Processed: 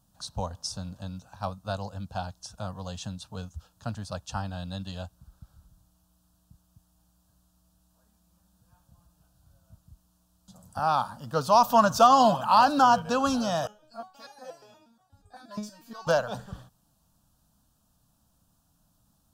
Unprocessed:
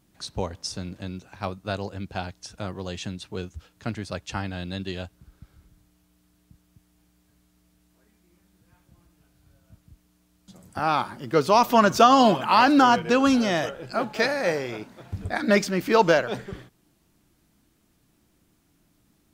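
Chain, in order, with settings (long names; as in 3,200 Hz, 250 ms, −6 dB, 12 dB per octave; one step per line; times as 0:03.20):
hard clipping −6.5 dBFS, distortion −33 dB
phaser with its sweep stopped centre 880 Hz, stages 4
0:13.67–0:16.07: step-sequenced resonator 8.4 Hz 210–410 Hz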